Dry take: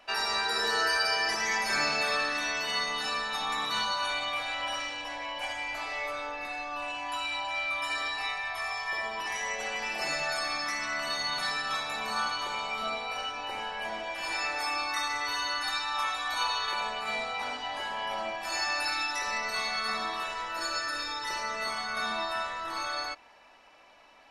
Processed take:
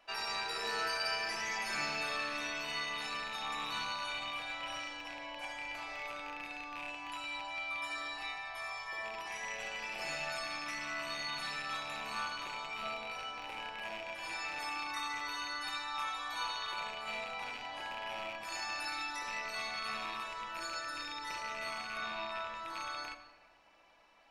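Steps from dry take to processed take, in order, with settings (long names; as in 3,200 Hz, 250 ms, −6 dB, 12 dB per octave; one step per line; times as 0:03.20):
loose part that buzzes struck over −51 dBFS, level −24 dBFS
0:21.97–0:22.55: high-frequency loss of the air 68 metres
rectangular room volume 1,700 cubic metres, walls mixed, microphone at 0.73 metres
level −9 dB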